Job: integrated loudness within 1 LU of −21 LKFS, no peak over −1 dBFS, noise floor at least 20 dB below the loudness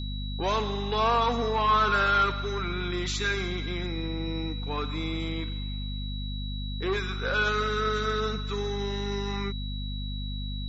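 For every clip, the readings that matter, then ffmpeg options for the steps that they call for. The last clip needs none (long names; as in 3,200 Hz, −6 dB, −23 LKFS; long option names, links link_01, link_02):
mains hum 50 Hz; hum harmonics up to 250 Hz; level of the hum −31 dBFS; interfering tone 3,900 Hz; level of the tone −40 dBFS; integrated loudness −28.5 LKFS; sample peak −12.5 dBFS; target loudness −21.0 LKFS
→ -af "bandreject=frequency=50:width_type=h:width=4,bandreject=frequency=100:width_type=h:width=4,bandreject=frequency=150:width_type=h:width=4,bandreject=frequency=200:width_type=h:width=4,bandreject=frequency=250:width_type=h:width=4"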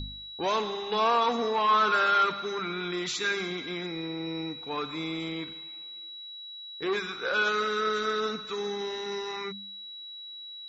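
mains hum none found; interfering tone 3,900 Hz; level of the tone −40 dBFS
→ -af "bandreject=frequency=3900:width=30"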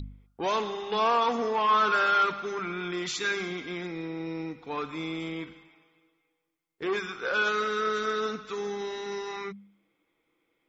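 interfering tone none found; integrated loudness −29.0 LKFS; sample peak −13.5 dBFS; target loudness −21.0 LKFS
→ -af "volume=8dB"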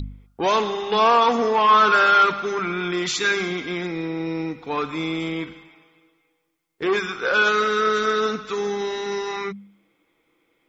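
integrated loudness −21.0 LKFS; sample peak −5.5 dBFS; background noise floor −69 dBFS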